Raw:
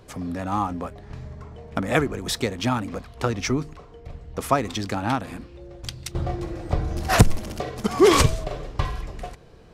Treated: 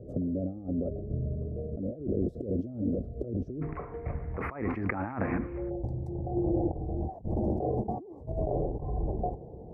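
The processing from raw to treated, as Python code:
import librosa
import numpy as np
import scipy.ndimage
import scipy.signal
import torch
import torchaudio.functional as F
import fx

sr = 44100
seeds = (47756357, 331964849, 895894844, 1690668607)

y = scipy.signal.sosfilt(scipy.signal.butter(2, 45.0, 'highpass', fs=sr, output='sos'), x)
y = fx.over_compress(y, sr, threshold_db=-33.0, ratio=-1.0)
y = fx.ellip_lowpass(y, sr, hz=fx.steps((0.0, 600.0), (3.61, 2200.0), (5.69, 820.0)), order=4, stop_db=40)
y = fx.dynamic_eq(y, sr, hz=360.0, q=4.3, threshold_db=-48.0, ratio=4.0, max_db=4)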